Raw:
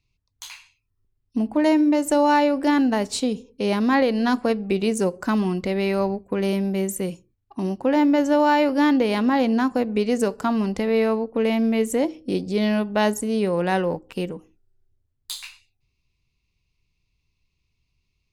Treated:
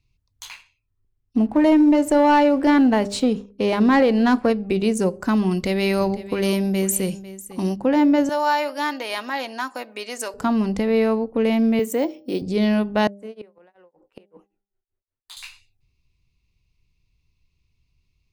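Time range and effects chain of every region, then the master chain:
0.45–4.50 s: tone controls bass -3 dB, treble -7 dB + waveshaping leveller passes 1
5.51–7.76 s: treble shelf 2.6 kHz +9.5 dB + delay 499 ms -16 dB
8.29–10.34 s: high-pass 810 Hz + treble shelf 6.3 kHz +6 dB + comb 3.2 ms, depth 37%
11.79–12.42 s: high-pass 280 Hz + careless resampling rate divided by 2×, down filtered, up hold
13.07–15.37 s: three-band isolator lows -20 dB, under 370 Hz, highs -13 dB, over 2.8 kHz + tremolo 5.3 Hz, depth 98% + inverted gate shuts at -26 dBFS, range -24 dB
whole clip: bass shelf 200 Hz +6 dB; de-hum 200.6 Hz, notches 4

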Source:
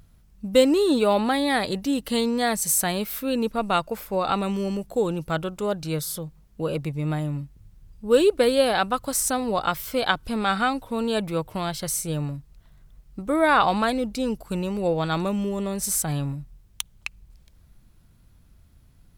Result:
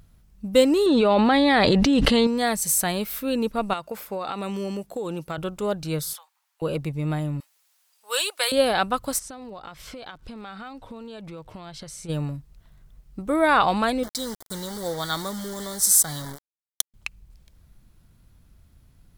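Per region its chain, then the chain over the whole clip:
0.86–2.27 s: low-pass 4.6 kHz + level flattener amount 100%
3.73–5.38 s: high-pass 210 Hz 6 dB/octave + compression 10:1, threshold -25 dBFS
6.13–6.62 s: elliptic high-pass 840 Hz, stop band 70 dB + overload inside the chain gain 34 dB
7.40–8.52 s: high-pass 740 Hz 24 dB/octave + treble shelf 2.5 kHz +10 dB
9.18–12.08 s: low-pass 6.2 kHz + compression 12:1, threshold -35 dBFS + crackle 150 per s -56 dBFS
14.03–16.94 s: tilt shelf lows -8.5 dB, about 1.4 kHz + word length cut 6-bit, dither none + Butterworth band-stop 2.6 kHz, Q 2.1
whole clip: none

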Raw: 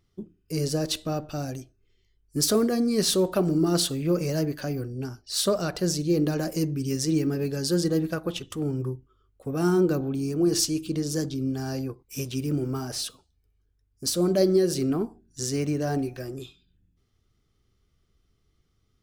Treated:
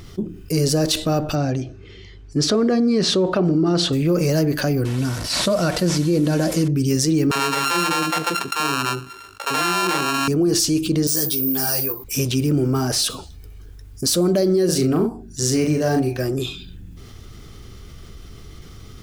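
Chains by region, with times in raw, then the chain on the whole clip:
1.35–3.93 s: high-pass 62 Hz + distance through air 140 m
4.85–6.68 s: one-bit delta coder 64 kbps, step -38 dBFS + comb of notches 410 Hz
7.31–10.28 s: sorted samples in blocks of 32 samples + frequency weighting A + bands offset in time highs, lows 40 ms, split 450 Hz
11.07–12.04 s: tilt EQ +3 dB/octave + careless resampling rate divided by 3×, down filtered, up zero stuff + three-phase chorus
14.65–16.19 s: doubling 39 ms -3.5 dB + upward expansion, over -44 dBFS
whole clip: peak limiter -18 dBFS; level flattener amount 50%; trim +6.5 dB

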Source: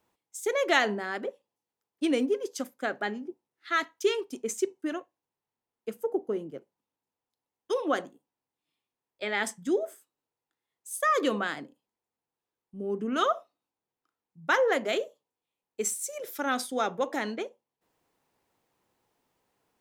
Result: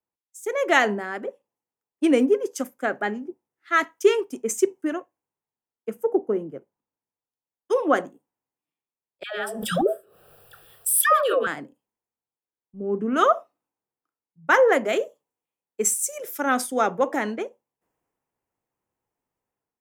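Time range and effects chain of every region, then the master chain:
9.23–11.47 s: static phaser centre 1.4 kHz, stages 8 + phase dispersion lows, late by 144 ms, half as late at 690 Hz + swell ahead of each attack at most 38 dB/s
whole clip: peaking EQ 4 kHz -11 dB 0.75 oct; level rider gain up to 8.5 dB; three bands expanded up and down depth 40%; trim -2 dB

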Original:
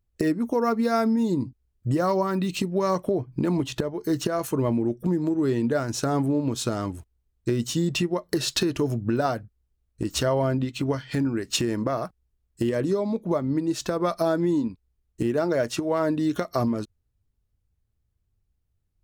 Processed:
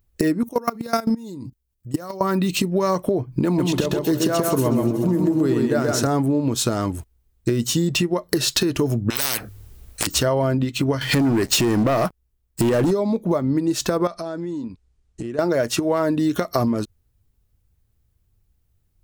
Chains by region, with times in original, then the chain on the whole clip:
0.43–2.21 s: treble shelf 3.2 kHz +7.5 dB + level held to a coarse grid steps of 21 dB
3.45–6.07 s: backward echo that repeats 185 ms, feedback 61%, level -13.5 dB + high-pass 43 Hz + delay 131 ms -3 dB
9.10–10.07 s: hum notches 50/100 Hz + spectrum-flattening compressor 10:1
11.01–12.91 s: compression 3:1, threshold -27 dBFS + waveshaping leveller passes 3
14.07–15.39 s: low-pass 8.6 kHz 24 dB/octave + compression 3:1, threshold -39 dBFS
whole clip: treble shelf 12 kHz +9 dB; compression 2.5:1, threshold -27 dBFS; trim +8.5 dB

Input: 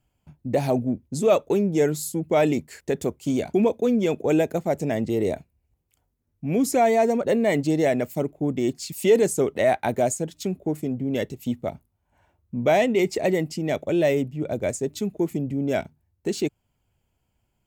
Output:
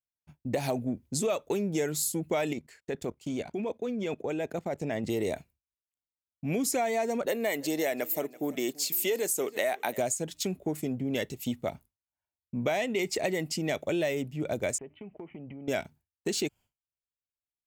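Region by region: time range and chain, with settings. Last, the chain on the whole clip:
2.53–5.04 s: low-pass 2.9 kHz 6 dB/octave + level held to a coarse grid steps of 14 dB
7.26–9.98 s: high-pass 280 Hz + peaking EQ 14 kHz +14 dB 0.41 oct + feedback delay 334 ms, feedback 27%, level -22.5 dB
14.78–15.68 s: rippled Chebyshev low-pass 3.1 kHz, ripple 6 dB + compression 12:1, threshold -35 dBFS
whole clip: expander -43 dBFS; tilt shelf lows -4.5 dB; compression, threshold -26 dBFS

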